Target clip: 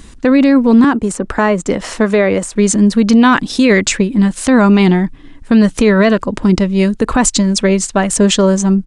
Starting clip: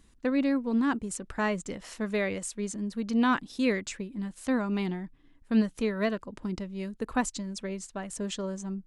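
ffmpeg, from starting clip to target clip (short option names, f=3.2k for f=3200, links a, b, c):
-filter_complex "[0:a]asettb=1/sr,asplit=3[a][b][c];[a]atrim=end=0.844[d];[b]atrim=start=0.84:end=2.56,asetpts=PTS-STARTPTS,afade=t=in:d=0.004:c=qsin,afade=t=out:st=1.716:d=0.004:c=qsin,acrossover=split=240|1600[e][f][g];[e]acompressor=threshold=-46dB:ratio=4[h];[f]acompressor=threshold=-32dB:ratio=4[i];[g]acompressor=threshold=-50dB:ratio=4[j];[h][i][j]amix=inputs=3:normalize=0[k];[c]atrim=start=2.556[l];[d][k]acrossfade=d=0.004:c1=hsin:c2=qsin[m];[m][l]acrossfade=d=0.004:c1=qsin:c2=hsin,aresample=22050,aresample=44100,alimiter=level_in=24.5dB:limit=-1dB:release=50:level=0:latency=1,volume=-1dB"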